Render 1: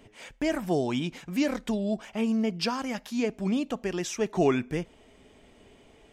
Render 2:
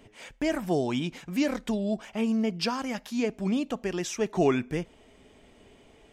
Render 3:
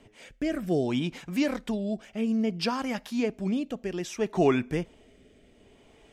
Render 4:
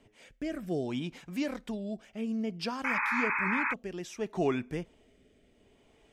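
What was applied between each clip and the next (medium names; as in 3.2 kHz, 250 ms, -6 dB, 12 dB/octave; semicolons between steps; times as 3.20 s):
no audible change
dynamic bell 6.6 kHz, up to -4 dB, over -52 dBFS, Q 2.1; rotary cabinet horn 0.6 Hz; trim +1.5 dB
painted sound noise, 2.84–3.74 s, 820–2600 Hz -24 dBFS; trim -6.5 dB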